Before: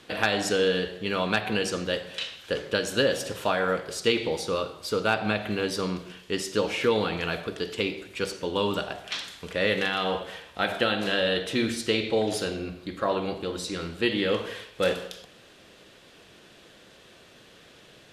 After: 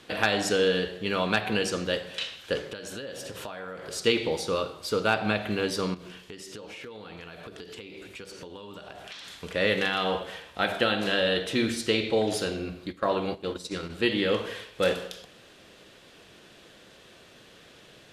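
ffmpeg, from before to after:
ffmpeg -i in.wav -filter_complex "[0:a]asettb=1/sr,asplit=3[link_01][link_02][link_03];[link_01]atrim=end=2.644[link_04];[link_02]atrim=start=2.64:end=3.93,asetpts=PTS-STARTPTS,afade=type=in:duration=0.004:curve=qsin,afade=type=out:start_time=1.286:duration=0.004:curve=qsin,acompressor=threshold=-34dB:ratio=10:attack=3.2:release=140:knee=1:detection=peak[link_05];[link_03]atrim=start=3.926[link_06];[link_04][link_05]acrossfade=duration=0.004:curve1=hsin:curve2=qsin[link_07];[link_07][link_06]acrossfade=duration=0.004:curve1=qsin:curve2=hsin,asettb=1/sr,asplit=3[link_08][link_09][link_10];[link_08]atrim=end=5.944[link_11];[link_09]atrim=start=5.94:end=9.4,asetpts=PTS-STARTPTS,afade=type=in:duration=0.004:curve=qsin,afade=type=out:start_time=3.456:duration=0.004:curve=qsin,acompressor=threshold=-38dB:ratio=16:attack=3.2:release=140:knee=1:detection=peak[link_12];[link_10]atrim=start=9.396[link_13];[link_11][link_12]acrossfade=duration=0.004:curve1=hsin:curve2=qsin[link_14];[link_14][link_13]acrossfade=duration=0.004:curve1=qsin:curve2=hsin,asplit=3[link_15][link_16][link_17];[link_15]afade=type=out:start_time=12.91:duration=0.02[link_18];[link_16]agate=range=-11dB:threshold=-34dB:ratio=16:release=100:detection=peak,afade=type=in:start_time=12.91:duration=0.02,afade=type=out:start_time=13.89:duration=0.02[link_19];[link_17]afade=type=in:start_time=13.89:duration=0.02[link_20];[link_18][link_19][link_20]amix=inputs=3:normalize=0" out.wav

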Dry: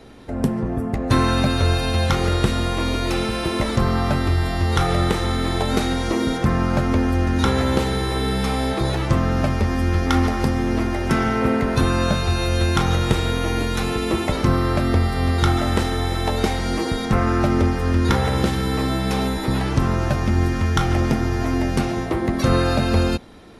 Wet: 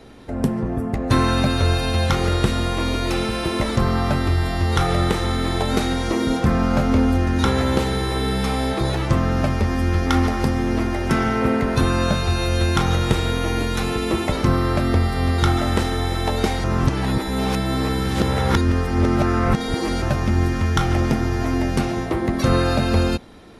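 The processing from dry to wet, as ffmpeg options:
ffmpeg -i in.wav -filter_complex "[0:a]asettb=1/sr,asplit=3[link_01][link_02][link_03];[link_01]atrim=end=6.274[link_04];[link_02]atrim=start=6.27:end=7.18,asetpts=PTS-STARTPTS,afade=type=in:duration=0.004:curve=qsin,afade=type=out:start_time=0.906:duration=0.004:curve=qsin,asplit=2[link_05][link_06];[link_06]adelay=27,volume=-6dB[link_07];[link_05][link_07]amix=inputs=2:normalize=0,atrim=end_sample=40131[link_08];[link_03]atrim=start=7.176[link_09];[link_04][link_08]acrossfade=duration=0.004:curve1=hsin:curve2=qsin[link_10];[link_10][link_09]acrossfade=duration=0.004:curve1=qsin:curve2=hsin,asplit=3[link_11][link_12][link_13];[link_11]atrim=end=16.642[link_14];[link_12]atrim=start=16.638:end=20.022,asetpts=PTS-STARTPTS,areverse[link_15];[link_13]atrim=start=20.018[link_16];[link_14][link_15]acrossfade=duration=0.004:curve1=hsin:curve2=hsin[link_17];[link_17][link_16]acrossfade=duration=0.004:curve1=hsin:curve2=hsin" out.wav

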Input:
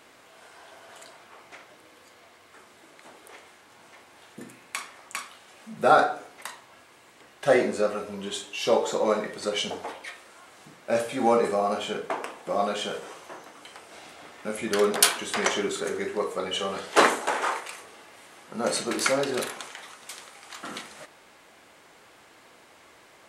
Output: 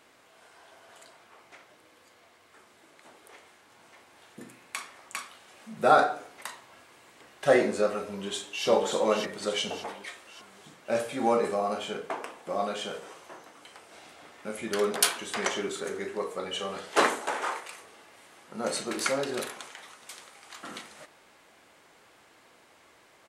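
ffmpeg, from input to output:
ffmpeg -i in.wav -filter_complex "[0:a]asplit=2[link_01][link_02];[link_02]afade=type=in:start_time=8.07:duration=0.01,afade=type=out:start_time=8.67:duration=0.01,aecho=0:1:580|1160|1740|2320|2900|3480:0.630957|0.315479|0.157739|0.0788697|0.0394348|0.0197174[link_03];[link_01][link_03]amix=inputs=2:normalize=0,dynaudnorm=framelen=470:gausssize=21:maxgain=11.5dB,volume=-5.5dB" out.wav

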